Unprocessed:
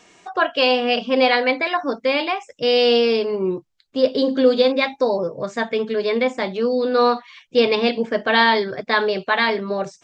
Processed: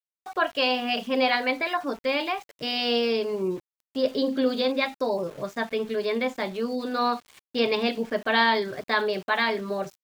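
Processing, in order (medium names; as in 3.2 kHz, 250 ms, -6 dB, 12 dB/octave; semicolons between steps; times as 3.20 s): band-stop 490 Hz, Q 12; small samples zeroed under -38 dBFS; trim -5.5 dB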